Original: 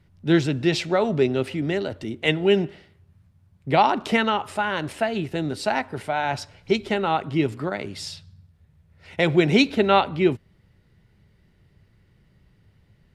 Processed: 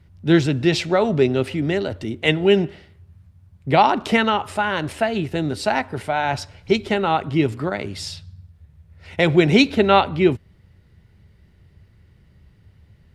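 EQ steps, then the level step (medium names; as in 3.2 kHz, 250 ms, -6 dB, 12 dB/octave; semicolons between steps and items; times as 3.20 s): peaking EQ 75 Hz +8.5 dB 0.76 oct; +3.0 dB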